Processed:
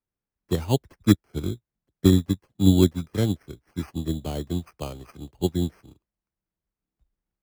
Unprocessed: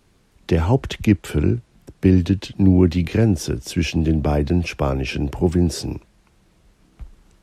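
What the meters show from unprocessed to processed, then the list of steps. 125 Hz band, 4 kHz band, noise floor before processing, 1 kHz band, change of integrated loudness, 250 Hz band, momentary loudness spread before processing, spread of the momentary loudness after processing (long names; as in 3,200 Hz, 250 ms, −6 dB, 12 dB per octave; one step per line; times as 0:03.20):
−6.0 dB, −3.5 dB, −59 dBFS, −9.0 dB, −5.0 dB, −5.0 dB, 7 LU, 17 LU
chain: decimation without filtering 12×
expander for the loud parts 2.5 to 1, over −32 dBFS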